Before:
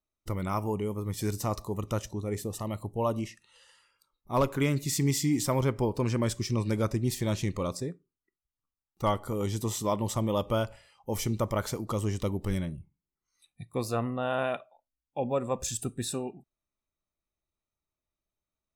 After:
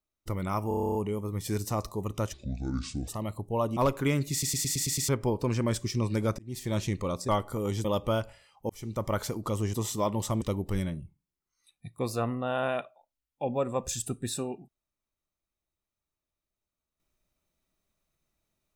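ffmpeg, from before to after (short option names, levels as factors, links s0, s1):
-filter_complex "[0:a]asplit=26[s0][s1][s2][s3][s4][s5][s6][s7][s8][s9][s10][s11][s12][s13][s14][s15][s16][s17][s18][s19][s20][s21][s22][s23][s24][s25];[s0]atrim=end=0.712[s26];[s1]atrim=start=0.678:end=0.712[s27];[s2]atrim=start=0.678:end=0.712[s28];[s3]atrim=start=0.678:end=0.712[s29];[s4]atrim=start=0.678:end=0.712[s30];[s5]atrim=start=0.678:end=0.712[s31];[s6]atrim=start=0.678:end=0.712[s32];[s7]atrim=start=0.678:end=0.712[s33];[s8]atrim=start=0.678:end=0.712[s34];[s9]atrim=start=0.678:end=2.064[s35];[s10]atrim=start=2.06:end=2.53,asetpts=PTS-STARTPTS,asetrate=27783,aresample=44100[s36];[s11]atrim=start=2.526:end=3.222[s37];[s12]atrim=start=4.318:end=4.982[s38];[s13]atrim=start=4.868:end=4.982[s39];[s14]atrim=start=4.868:end=4.982[s40];[s15]atrim=start=4.868:end=4.982[s41];[s16]atrim=start=4.868:end=4.982[s42];[s17]atrim=start=4.868:end=4.982[s43];[s18]atrim=start=4.868:end=4.982[s44];[s19]atrim=start=5.638:end=6.94,asetpts=PTS-STARTPTS,afade=t=out:st=1.298:d=0.004:c=hsin[s45];[s20]atrim=start=6.94:end=7.842,asetpts=PTS-STARTPTS,afade=t=in:d=0.38[s46];[s21]atrim=start=9.038:end=9.602[s47];[s22]atrim=start=10.278:end=11.13,asetpts=PTS-STARTPTS,afade=t=out:st=0.848:d=0.004:c=hsin[s48];[s23]atrim=start=11.13:end=12.172,asetpts=PTS-STARTPTS,afade=t=in:d=0.41[s49];[s24]atrim=start=9.598:end=10.282[s50];[s25]atrim=start=12.168[s51];[s26][s27]acrossfade=d=0.004:c1=hsin:c2=hsin[s52];[s52][s28]acrossfade=d=0.004:c1=hsin:c2=hsin[s53];[s53][s29]acrossfade=d=0.004:c1=hsin:c2=hsin[s54];[s54][s30]acrossfade=d=0.004:c1=hsin:c2=hsin[s55];[s55][s31]acrossfade=d=0.004:c1=hsin:c2=hsin[s56];[s56][s32]acrossfade=d=0.004:c1=hsin:c2=hsin[s57];[s57][s33]acrossfade=d=0.004:c1=hsin:c2=hsin[s58];[s58][s34]acrossfade=d=0.004:c1=hsin:c2=hsin[s59];[s59][s35]acrossfade=d=0.004:c1=hsin:c2=hsin[s60];[s60][s36]acrossfade=d=0.004:c1=hsin:c2=hsin[s61];[s61][s37]acrossfade=d=0.004:c1=hsin:c2=hsin[s62];[s62][s38]acrossfade=d=0.004:c1=hsin:c2=hsin[s63];[s63][s39]acrossfade=d=0.004:c1=hsin:c2=hsin[s64];[s64][s40]acrossfade=d=0.004:c1=hsin:c2=hsin[s65];[s65][s41]acrossfade=d=0.004:c1=hsin:c2=hsin[s66];[s66][s42]acrossfade=d=0.004:c1=hsin:c2=hsin[s67];[s67][s43]acrossfade=d=0.004:c1=hsin:c2=hsin[s68];[s68][s44]acrossfade=d=0.004:c1=hsin:c2=hsin[s69];[s45][s46]concat=n=2:v=0:a=1[s70];[s69][s70]acrossfade=d=0.004:c1=hsin:c2=hsin[s71];[s71][s47]acrossfade=d=0.004:c1=hsin:c2=hsin[s72];[s48][s49]concat=n=2:v=0:a=1[s73];[s72][s73]acrossfade=d=0.004:c1=hsin:c2=hsin[s74];[s74][s50]acrossfade=d=0.004:c1=hsin:c2=hsin[s75];[s75][s51]acrossfade=d=0.004:c1=hsin:c2=hsin"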